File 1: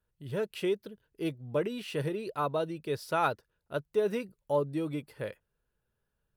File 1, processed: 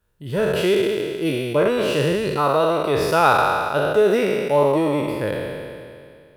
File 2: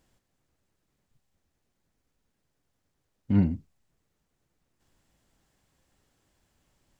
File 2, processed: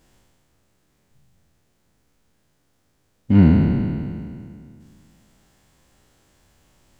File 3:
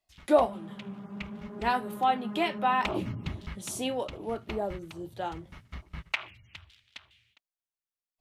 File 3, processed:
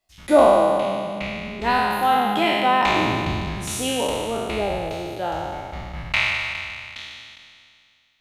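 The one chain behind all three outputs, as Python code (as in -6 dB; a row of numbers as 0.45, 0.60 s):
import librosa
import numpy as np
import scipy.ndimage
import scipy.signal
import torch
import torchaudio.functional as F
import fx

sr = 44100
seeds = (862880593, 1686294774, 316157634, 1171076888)

y = fx.spec_trails(x, sr, decay_s=2.27)
y = y * 10.0 ** (-3 / 20.0) / np.max(np.abs(y))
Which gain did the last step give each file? +9.0, +8.0, +4.5 dB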